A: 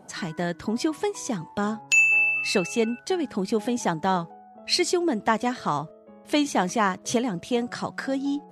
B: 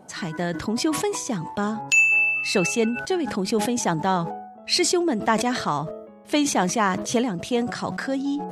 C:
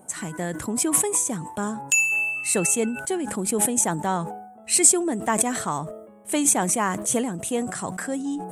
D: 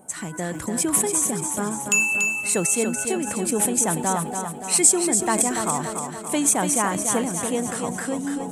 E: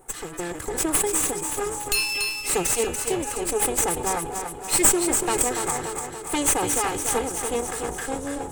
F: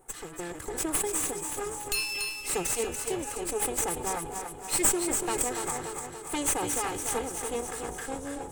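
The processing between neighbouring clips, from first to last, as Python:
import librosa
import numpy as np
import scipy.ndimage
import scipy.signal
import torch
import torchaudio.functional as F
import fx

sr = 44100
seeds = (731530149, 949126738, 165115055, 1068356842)

y1 = fx.sustainer(x, sr, db_per_s=62.0)
y1 = y1 * librosa.db_to_amplitude(1.0)
y2 = fx.high_shelf_res(y1, sr, hz=6500.0, db=11.5, q=3.0)
y2 = y2 * librosa.db_to_amplitude(-2.5)
y3 = fx.echo_feedback(y2, sr, ms=287, feedback_pct=57, wet_db=-6.5)
y4 = fx.lower_of_two(y3, sr, delay_ms=2.4)
y5 = fx.echo_feedback(y4, sr, ms=267, feedback_pct=38, wet_db=-17.0)
y5 = y5 * librosa.db_to_amplitude(-6.5)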